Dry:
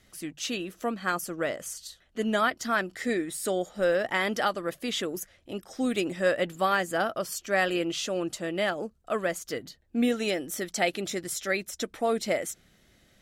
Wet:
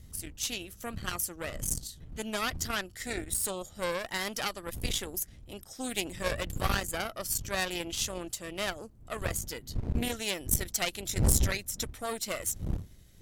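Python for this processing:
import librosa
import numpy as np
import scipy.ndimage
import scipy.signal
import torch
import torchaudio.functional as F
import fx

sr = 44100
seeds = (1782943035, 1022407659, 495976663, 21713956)

y = fx.dmg_wind(x, sr, seeds[0], corner_hz=84.0, level_db=-27.0)
y = fx.cheby_harmonics(y, sr, harmonics=(8,), levels_db=(-16,), full_scale_db=-3.5)
y = F.preemphasis(torch.from_numpy(y), 0.8).numpy()
y = y * librosa.db_to_amplitude(3.5)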